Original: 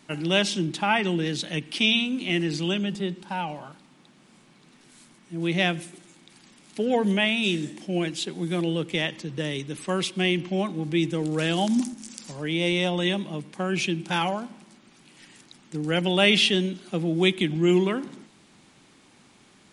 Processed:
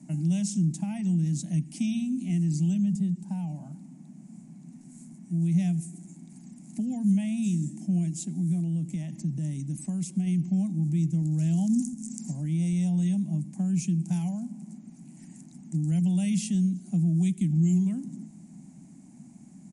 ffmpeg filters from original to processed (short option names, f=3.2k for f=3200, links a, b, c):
-filter_complex "[0:a]asplit=3[a][b][c];[a]afade=t=out:st=8.37:d=0.02[d];[b]acompressor=threshold=-27dB:ratio=3:attack=3.2:release=140:knee=1:detection=peak,afade=t=in:st=8.37:d=0.02,afade=t=out:st=10.26:d=0.02[e];[c]afade=t=in:st=10.26:d=0.02[f];[d][e][f]amix=inputs=3:normalize=0,asettb=1/sr,asplit=3[g][h][i];[g]atrim=end=11.024[j];[h]atrim=start=11.02:end=11.73,asetpts=PTS-STARTPTS,afade=t=in:d=0.004:c=qsin,afade=t=out:st=0.706:d=0.004:c=qsin,equalizer=f=8.7k:t=o:w=0.66:g=-7.5[k];[i]atrim=start=11.726[l];[j][k]acrossfade=d=0.004:c1=hsin:c2=qsin[m];[m][l]acrossfade=d=0.004:c1=qsin:c2=hsin,lowpass=9.3k,acrossover=split=120|3000[n][o][p];[o]acompressor=threshold=-43dB:ratio=3[q];[n][q][p]amix=inputs=3:normalize=0,firequalizer=gain_entry='entry(110,0);entry(160,15);entry(250,11);entry(440,-19);entry(670,-1);entry(1200,-19);entry(2100,-13);entry(3400,-24);entry(6900,3)':delay=0.05:min_phase=1"